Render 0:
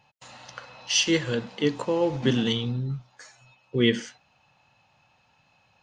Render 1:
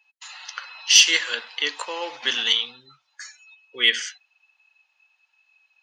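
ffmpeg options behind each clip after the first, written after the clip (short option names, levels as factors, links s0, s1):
-af "highpass=1500,afftdn=nr=15:nf=-55,acontrast=80,volume=1.5"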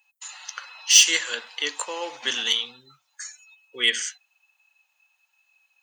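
-filter_complex "[0:a]equalizer=f=2200:t=o:w=2.6:g=-3,acrossover=split=7800[s0][s1];[s1]asoftclip=type=tanh:threshold=0.0282[s2];[s0][s2]amix=inputs=2:normalize=0,aexciter=amount=4.8:drive=3.2:freq=6800"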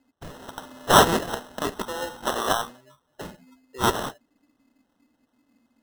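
-af "acrusher=samples=19:mix=1:aa=0.000001"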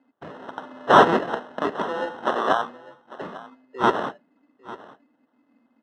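-af "asoftclip=type=hard:threshold=0.355,highpass=210,lowpass=2100,aecho=1:1:848:0.119,volume=1.58"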